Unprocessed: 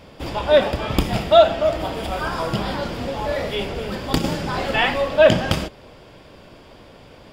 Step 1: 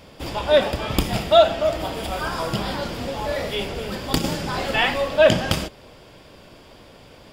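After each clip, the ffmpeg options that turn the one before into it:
-af "highshelf=f=4400:g=7,volume=0.794"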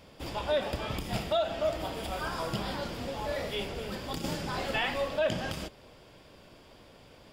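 -af "alimiter=limit=0.266:level=0:latency=1:release=157,volume=0.398"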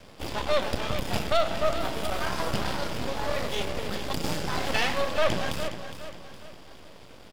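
-af "aeval=exprs='max(val(0),0)':c=same,aecho=1:1:413|826|1239|1652:0.299|0.119|0.0478|0.0191,volume=2.51"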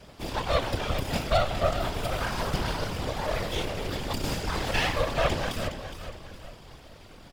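-af "afftfilt=real='hypot(re,im)*cos(2*PI*random(0))':imag='hypot(re,im)*sin(2*PI*random(1))':win_size=512:overlap=0.75,volume=1.88"

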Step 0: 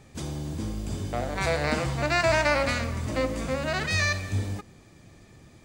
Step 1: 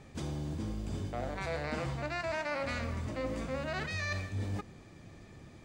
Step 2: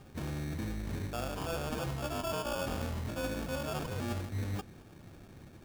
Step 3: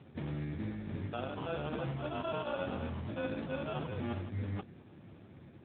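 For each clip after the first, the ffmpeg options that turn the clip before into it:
-af "lowpass=f=4000:p=1,bandreject=f=60:t=h:w=6,bandreject=f=120:t=h:w=6,areverse,acompressor=threshold=0.0224:ratio=6,areverse"
-af "acrusher=samples=22:mix=1:aa=0.000001"
-ar 8000 -c:a libopencore_amrnb -b:a 10200

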